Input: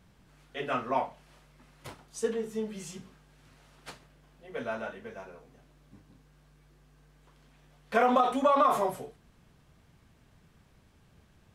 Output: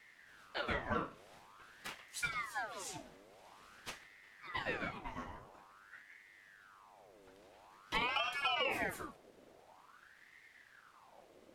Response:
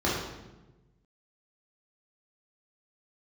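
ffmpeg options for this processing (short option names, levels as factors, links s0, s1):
-filter_complex "[0:a]acrossover=split=350|1000[s0][s1][s2];[s0]acompressor=threshold=0.00355:ratio=4[s3];[s1]acompressor=threshold=0.0112:ratio=4[s4];[s2]acompressor=threshold=0.0112:ratio=4[s5];[s3][s4][s5]amix=inputs=3:normalize=0,aeval=exprs='val(0)*sin(2*PI*1200*n/s+1200*0.65/0.48*sin(2*PI*0.48*n/s))':c=same,volume=1.26"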